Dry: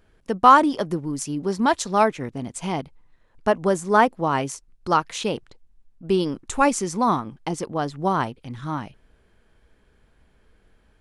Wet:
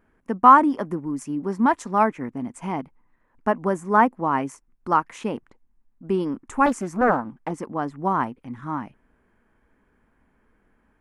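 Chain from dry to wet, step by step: graphic EQ 250/1000/2000/4000 Hz +11/+9/+7/-11 dB; 6.66–7.51 Doppler distortion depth 0.5 ms; gain -8.5 dB

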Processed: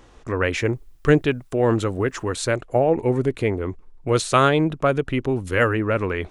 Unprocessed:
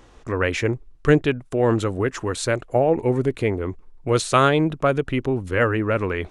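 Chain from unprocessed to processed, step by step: 0.59–2.23 requantised 12-bit, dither triangular; 5.29–5.73 high shelf 3300 Hz +8 dB

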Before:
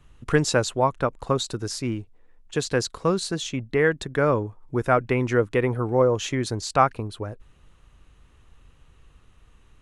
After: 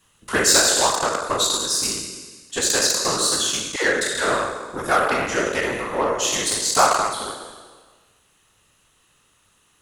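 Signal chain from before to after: spectral trails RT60 1.52 s; added harmonics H 7 -28 dB, 8 -32 dB, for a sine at -1 dBFS; RIAA curve recording; notch 2300 Hz, Q 12; whisperiser; 3.76–4.34 dispersion lows, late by 87 ms, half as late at 450 Hz

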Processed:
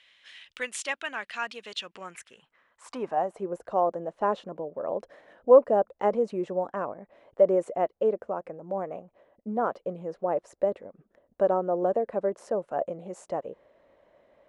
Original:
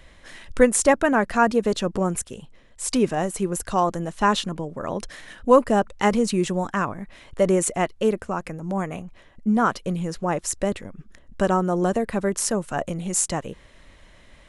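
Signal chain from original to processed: band-pass sweep 3000 Hz -> 570 Hz, 1.8–3.49; gain +1.5 dB

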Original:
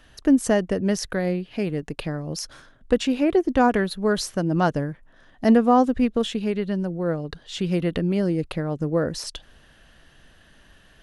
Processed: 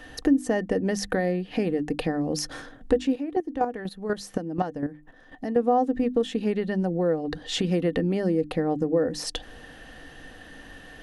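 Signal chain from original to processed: small resonant body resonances 290/480/750/1800 Hz, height 12 dB, ringing for 50 ms; compressor 3:1, threshold -30 dBFS, peak gain reduction 20 dB; notches 50/100/150/200/250/300 Hz; 3.12–5.57 chopper 4.1 Hz, depth 65%, duty 15%; gain +5.5 dB

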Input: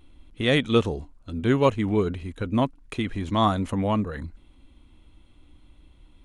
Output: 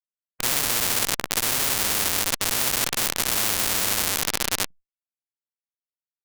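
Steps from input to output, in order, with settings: short-time reversal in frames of 0.154 s; AGC gain up to 7.5 dB; gate with hold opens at -38 dBFS; low shelf 450 Hz +4.5 dB; on a send: echo with dull and thin repeats by turns 0.205 s, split 820 Hz, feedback 75%, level -6 dB; on the sum: harmonic tremolo 1.1 Hz, depth 50%, crossover 860 Hz; Schmitt trigger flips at -21 dBFS; vibrato 0.42 Hz 30 cents; maximiser +35 dB; spectral compressor 10:1; gain -1 dB

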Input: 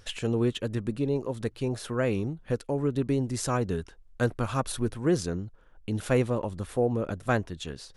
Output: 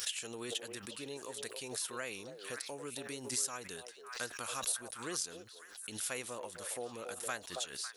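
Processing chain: differentiator; compressor 2:1, threshold -46 dBFS, peak gain reduction 9 dB; delay with a stepping band-pass 0.276 s, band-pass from 550 Hz, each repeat 1.4 oct, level -5 dB; backwards sustainer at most 86 dB/s; gain +8 dB

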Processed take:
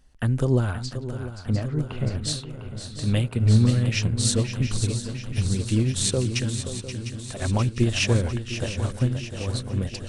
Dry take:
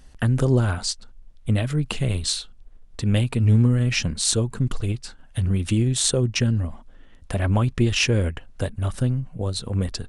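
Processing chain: 0.78–2.23 treble ducked by the level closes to 1600 Hz, closed at -20 dBFS; 6.39–7.42 low shelf 410 Hz -6.5 dB; swung echo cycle 0.703 s, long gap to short 3:1, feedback 64%, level -8 dB; upward expander 1.5:1, over -33 dBFS

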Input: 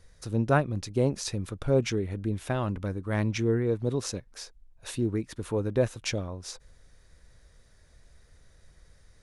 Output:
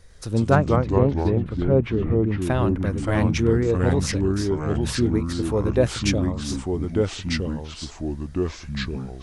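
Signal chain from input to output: 0.55–2.42 air absorption 500 m; echoes that change speed 0.102 s, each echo -3 st, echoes 3; gain +5.5 dB

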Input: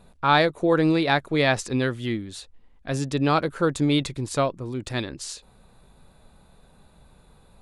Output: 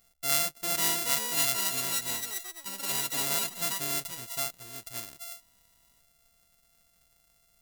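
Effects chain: sample sorter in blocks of 64 samples; echoes that change speed 0.613 s, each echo +6 st, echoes 3; pre-emphasis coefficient 0.9; gain -1 dB

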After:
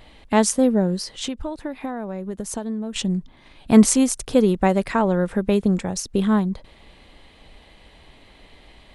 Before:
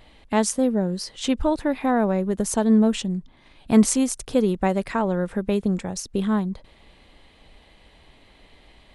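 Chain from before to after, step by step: 0.96–2.96 compressor 6:1, threshold -30 dBFS, peak gain reduction 15.5 dB; gain +3.5 dB

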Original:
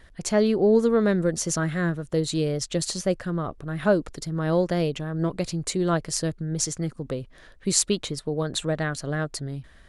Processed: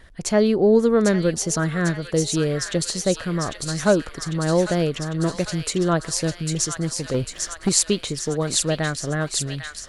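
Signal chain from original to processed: 7.14–7.69 sample leveller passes 2; on a send: thin delay 0.799 s, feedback 64%, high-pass 1600 Hz, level -4 dB; on the sum: gain +3 dB

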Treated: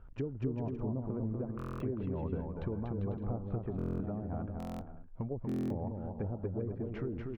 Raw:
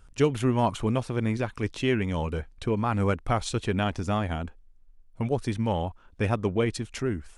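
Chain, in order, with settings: treble ducked by the level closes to 460 Hz, closed at -22 dBFS; LPF 1200 Hz 12 dB/oct; compressor 3:1, threshold -38 dBFS, peak gain reduction 14.5 dB; on a send: bouncing-ball echo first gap 0.24 s, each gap 0.65×, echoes 5; on the sum: stuck buffer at 1.57/3.77/4.58/5.47, samples 1024, times 9

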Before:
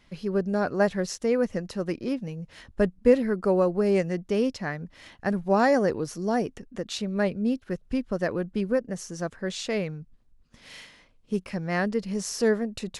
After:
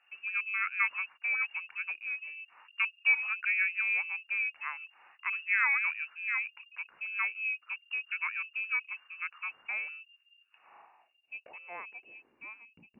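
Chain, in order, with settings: high shelf 2200 Hz -10.5 dB; inverted band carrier 2800 Hz; band-pass sweep 1400 Hz -> 210 Hz, 10.49–12.86; gain +1.5 dB

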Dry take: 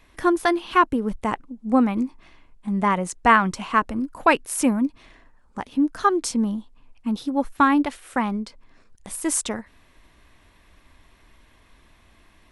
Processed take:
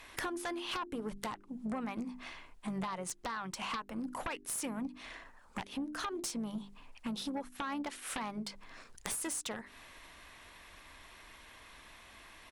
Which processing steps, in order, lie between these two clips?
low shelf 430 Hz -11.5 dB; notches 50/100/150/200/250/300/350/400 Hz; vocal rider 2 s; limiter -15 dBFS, peak gain reduction 10.5 dB; compressor 16:1, threshold -39 dBFS, peak gain reduction 20 dB; harmoniser -5 st -16 dB; added harmonics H 6 -20 dB, 7 -9 dB, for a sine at -19 dBFS; gain +2.5 dB

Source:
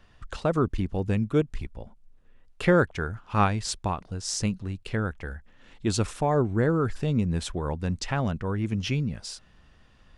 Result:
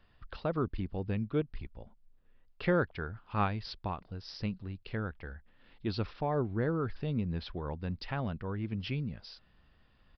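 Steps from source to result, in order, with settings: downsampling 11025 Hz; gain -8 dB

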